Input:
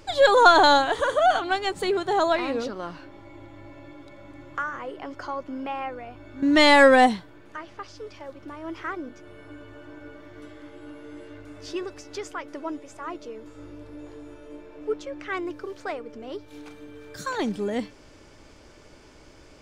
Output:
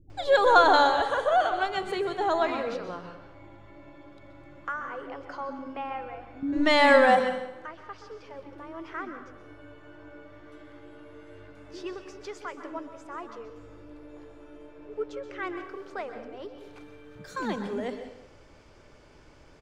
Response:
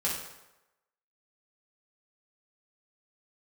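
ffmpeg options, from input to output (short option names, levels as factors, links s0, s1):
-filter_complex "[0:a]highshelf=f=4100:g=-8.5,acrossover=split=290[s0][s1];[s1]adelay=100[s2];[s0][s2]amix=inputs=2:normalize=0,asplit=2[s3][s4];[1:a]atrim=start_sample=2205,adelay=124[s5];[s4][s5]afir=irnorm=-1:irlink=0,volume=0.188[s6];[s3][s6]amix=inputs=2:normalize=0,volume=0.708"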